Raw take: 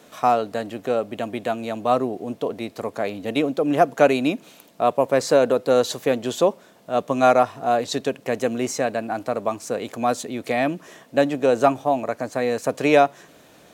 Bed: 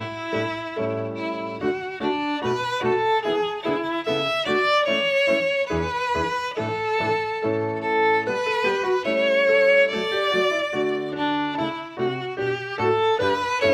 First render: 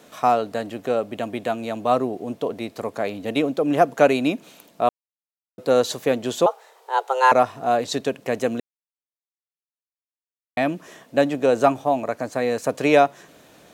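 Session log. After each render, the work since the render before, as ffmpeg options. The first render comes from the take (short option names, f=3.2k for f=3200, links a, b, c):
-filter_complex "[0:a]asettb=1/sr,asplit=3[a][b][c];[a]atrim=end=6.464[d];[b]atrim=start=6.46:end=7.32,asetpts=PTS-STARTPTS,afade=t=in:d=0.004:c=qsin,afade=t=out:st=0.856:d=0.004:c=qsin,afreqshift=260[e];[c]atrim=start=7.316[f];[d][e]acrossfade=d=0.004:c1=hsin:c2=qsin[g];[g][f]acrossfade=d=0.004:c1=qsin:c2=hsin,asplit=5[h][i][j][k][l];[h]atrim=end=4.89,asetpts=PTS-STARTPTS,afade=t=out:st=4.886:d=0.004:c=hsin[m];[i]atrim=start=4.89:end=5.58,asetpts=PTS-STARTPTS,volume=0[n];[j]atrim=start=5.58:end=8.6,asetpts=PTS-STARTPTS,afade=t=in:d=0.004:c=hsin,afade=t=out:st=3.016:d=0.004:c=hsin[o];[k]atrim=start=8.6:end=10.57,asetpts=PTS-STARTPTS,volume=0[p];[l]atrim=start=10.57,asetpts=PTS-STARTPTS,afade=t=in:d=0.004:c=hsin[q];[m][n][o][p][q]concat=n=5:v=0:a=1"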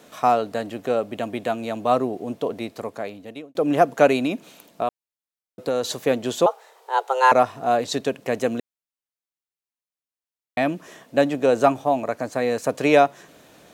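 -filter_complex "[0:a]asettb=1/sr,asplit=3[a][b][c];[a]atrim=end=4.244[d];[b]atrim=start=4.24:end=5.89,asetpts=PTS-STARTPTS,afade=t=in:d=0.004:c=qsin,afade=t=out:st=1.646:d=0.004:c=qsin,acompressor=threshold=-18dB:ratio=6:attack=3.2:release=140:knee=1:detection=peak[e];[c]atrim=start=5.886[f];[d][e]acrossfade=d=0.004:c1=hsin:c2=qsin[g];[g][f]acrossfade=d=0.004:c1=qsin:c2=hsin,asplit=2[h][i];[h]atrim=end=3.55,asetpts=PTS-STARTPTS,afade=t=out:st=2.61:d=0.94[j];[i]atrim=start=3.55,asetpts=PTS-STARTPTS,afade=t=in:d=0.004:c=hsin[k];[j][k]concat=n=2:v=0:a=1"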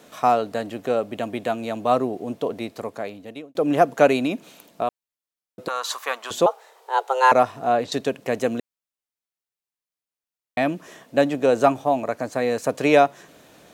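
-filter_complex "[0:a]asettb=1/sr,asplit=3[a][b][c];[a]atrim=end=5.684[d];[b]atrim=start=5.68:end=6.31,asetpts=PTS-STARTPTS,afade=t=in:d=0.004:c=qsin,afade=t=out:st=0.626:d=0.004:c=qsin,highpass=f=1.1k:t=q:w=4.6[e];[c]atrim=start=6.306[f];[d][e]acrossfade=d=0.004:c1=hsin:c2=qsin[g];[g][f]acrossfade=d=0.004:c1=qsin:c2=hsin,asettb=1/sr,asplit=3[h][i][j];[h]atrim=end=7.514[k];[i]atrim=start=7.51:end=7.92,asetpts=PTS-STARTPTS,afade=t=in:d=0.004:c=qsin,afade=t=out:st=0.406:d=0.004:c=qsin,acrossover=split=3900[l][m];[m]acompressor=threshold=-51dB:ratio=4:attack=1:release=60[n];[l][n]amix=inputs=2:normalize=0[o];[j]atrim=start=7.916[p];[k][o]acrossfade=d=0.004:c1=hsin:c2=qsin[q];[q][p]acrossfade=d=0.004:c1=qsin:c2=hsin"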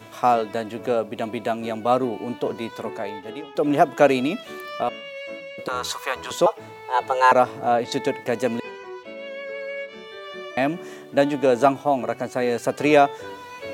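-filter_complex "[1:a]volume=-15dB[a];[0:a][a]amix=inputs=2:normalize=0"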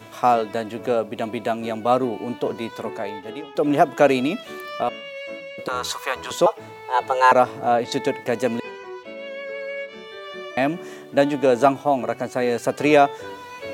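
-af "volume=1dB,alimiter=limit=-3dB:level=0:latency=1"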